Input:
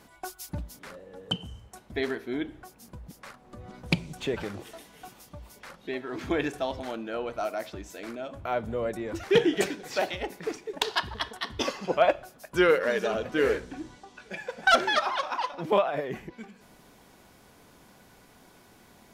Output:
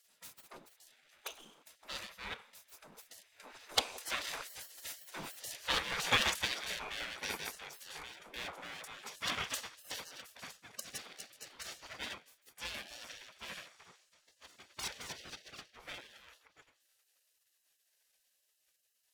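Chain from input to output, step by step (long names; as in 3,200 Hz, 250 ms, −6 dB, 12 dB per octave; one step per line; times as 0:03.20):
lower of the sound and its delayed copy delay 0.83 ms
source passing by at 0:05.55, 13 m/s, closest 8.5 metres
gate on every frequency bin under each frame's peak −20 dB weak
level +15.5 dB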